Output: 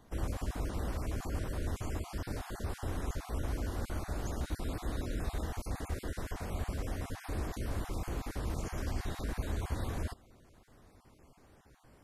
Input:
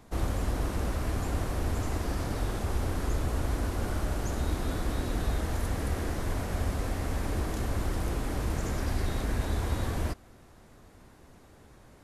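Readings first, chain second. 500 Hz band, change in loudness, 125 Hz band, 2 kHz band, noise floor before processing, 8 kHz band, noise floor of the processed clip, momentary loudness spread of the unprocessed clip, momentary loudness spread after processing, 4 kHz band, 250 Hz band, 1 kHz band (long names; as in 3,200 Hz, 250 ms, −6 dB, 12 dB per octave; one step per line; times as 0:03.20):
−6.5 dB, −6.5 dB, −6.5 dB, −6.5 dB, −55 dBFS, −6.5 dB, −61 dBFS, 1 LU, 3 LU, −7.0 dB, −6.5 dB, −7.0 dB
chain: time-frequency cells dropped at random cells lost 23%
level −5.5 dB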